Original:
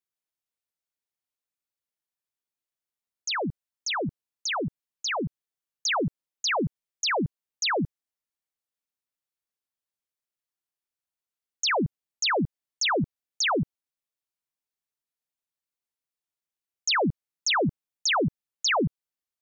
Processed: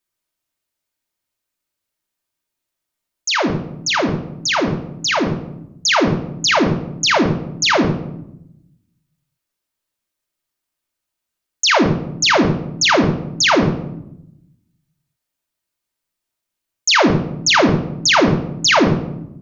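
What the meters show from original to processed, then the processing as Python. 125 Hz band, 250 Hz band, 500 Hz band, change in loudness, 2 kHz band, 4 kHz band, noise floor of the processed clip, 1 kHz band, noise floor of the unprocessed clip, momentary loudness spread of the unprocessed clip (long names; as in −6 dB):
+12.5 dB, +13.5 dB, +12.0 dB, +11.5 dB, +11.5 dB, +11.0 dB, −81 dBFS, +11.0 dB, below −85 dBFS, 10 LU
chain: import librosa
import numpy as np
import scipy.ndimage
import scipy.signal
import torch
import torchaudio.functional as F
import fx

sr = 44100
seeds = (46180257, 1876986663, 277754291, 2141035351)

y = fx.room_shoebox(x, sr, seeds[0], volume_m3=2200.0, walls='furnished', distance_m=2.7)
y = F.gain(torch.from_numpy(y), 9.0).numpy()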